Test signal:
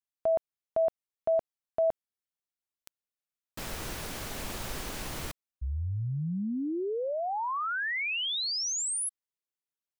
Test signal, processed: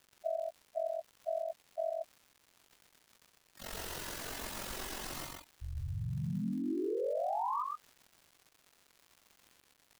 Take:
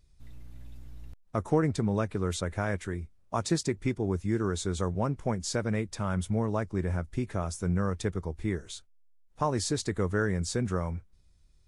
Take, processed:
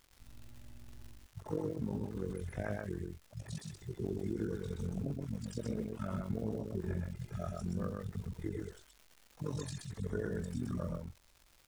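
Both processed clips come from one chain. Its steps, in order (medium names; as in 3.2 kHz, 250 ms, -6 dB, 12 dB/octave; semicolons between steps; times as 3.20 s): harmonic-percussive separation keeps harmonic; bass shelf 130 Hz -11 dB; band-stop 2.3 kHz, Q 14; compression, threshold -34 dBFS; crackle 310 per s -50 dBFS; AM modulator 45 Hz, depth 80%; on a send: delay 125 ms -3 dB; on the sum: trim +3.5 dB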